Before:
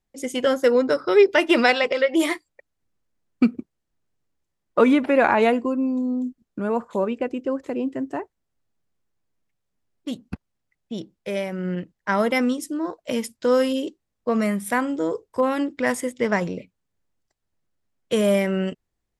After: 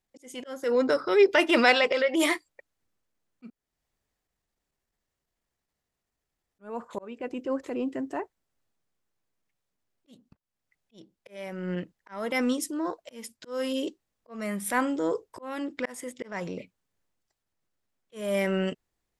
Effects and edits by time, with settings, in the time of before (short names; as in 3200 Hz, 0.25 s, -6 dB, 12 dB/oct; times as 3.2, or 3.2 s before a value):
3.5–6.59 room tone
whole clip: transient shaper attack -7 dB, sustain +2 dB; low shelf 290 Hz -6.5 dB; auto swell 0.433 s